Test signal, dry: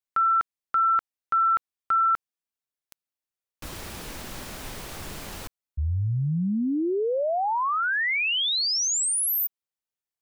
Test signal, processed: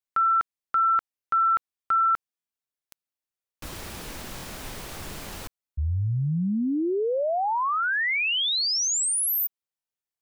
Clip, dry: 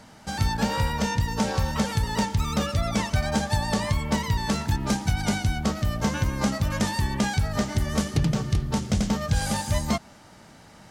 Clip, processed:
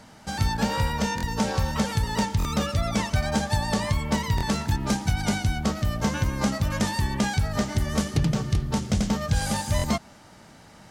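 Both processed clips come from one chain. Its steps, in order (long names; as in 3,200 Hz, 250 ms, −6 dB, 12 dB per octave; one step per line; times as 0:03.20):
buffer that repeats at 0:01.16/0:02.38/0:04.36/0:09.77, samples 1,024, times 2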